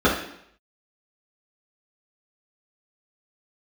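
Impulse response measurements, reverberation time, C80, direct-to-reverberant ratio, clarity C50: 0.70 s, 9.0 dB, -8.5 dB, 5.0 dB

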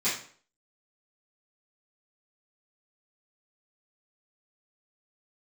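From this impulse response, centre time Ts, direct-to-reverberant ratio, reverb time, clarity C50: 37 ms, -13.5 dB, 0.50 s, 4.5 dB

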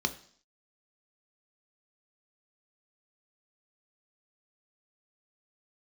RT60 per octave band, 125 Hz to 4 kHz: 0.50, 0.55, 0.55, 0.55, 0.55, 0.65 s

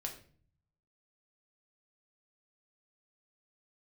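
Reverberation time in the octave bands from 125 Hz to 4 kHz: 1.1, 0.80, 0.50, 0.40, 0.40, 0.35 s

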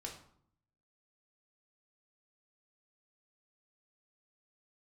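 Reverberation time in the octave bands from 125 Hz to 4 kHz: 1.0, 0.85, 0.60, 0.65, 0.50, 0.40 s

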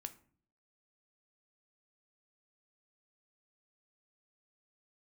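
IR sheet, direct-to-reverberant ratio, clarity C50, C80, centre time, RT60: 8.5 dB, 16.0 dB, 20.5 dB, 5 ms, 0.50 s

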